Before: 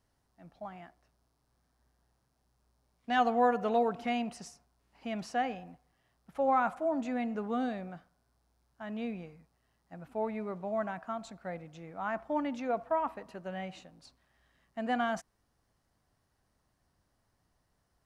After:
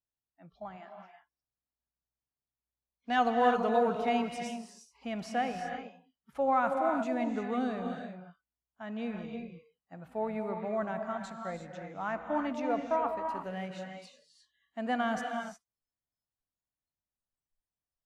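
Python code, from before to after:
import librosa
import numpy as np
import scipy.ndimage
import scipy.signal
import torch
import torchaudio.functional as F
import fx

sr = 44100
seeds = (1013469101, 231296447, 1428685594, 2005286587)

y = fx.rev_gated(x, sr, seeds[0], gate_ms=380, shape='rising', drr_db=4.0)
y = fx.noise_reduce_blind(y, sr, reduce_db=26)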